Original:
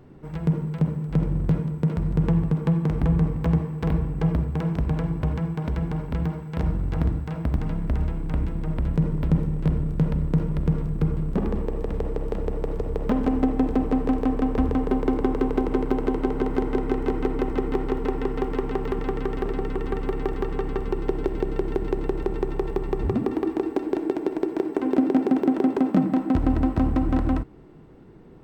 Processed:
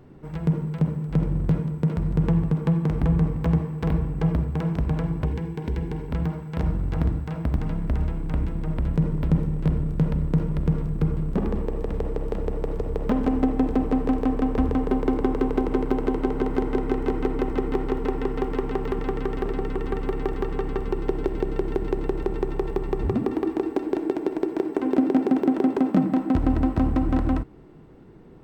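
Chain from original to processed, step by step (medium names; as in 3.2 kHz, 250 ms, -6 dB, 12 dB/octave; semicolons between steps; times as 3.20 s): 5.25–6.10 s: graphic EQ with 31 bands 160 Hz -5 dB, 400 Hz +7 dB, 630 Hz -11 dB, 1.25 kHz -12 dB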